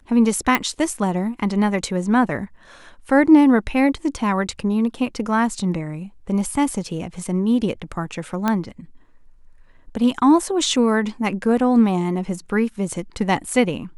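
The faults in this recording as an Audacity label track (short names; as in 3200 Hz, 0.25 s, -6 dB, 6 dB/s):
0.550000	0.550000	pop -5 dBFS
8.480000	8.480000	pop -7 dBFS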